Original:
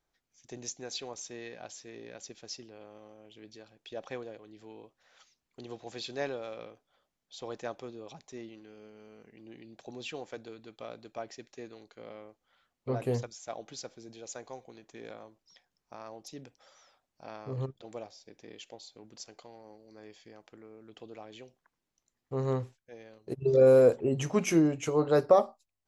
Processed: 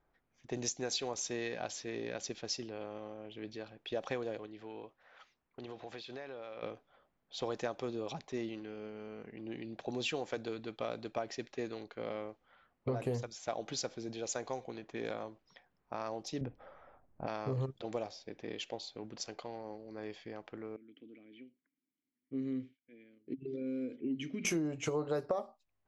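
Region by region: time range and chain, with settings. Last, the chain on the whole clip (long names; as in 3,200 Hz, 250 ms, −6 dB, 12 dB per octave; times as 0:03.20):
0:04.46–0:06.63: low-shelf EQ 490 Hz −6.5 dB + downward compressor 16 to 1, threshold −47 dBFS + one half of a high-frequency compander decoder only
0:16.41–0:17.27: low-pass filter 2,400 Hz + spectral tilt −3 dB per octave
0:20.76–0:24.45: downward compressor, threshold −27 dBFS + formant filter i
whole clip: downward compressor 8 to 1, threshold −39 dBFS; low-pass that shuts in the quiet parts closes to 1,700 Hz, open at −38 dBFS; level +7 dB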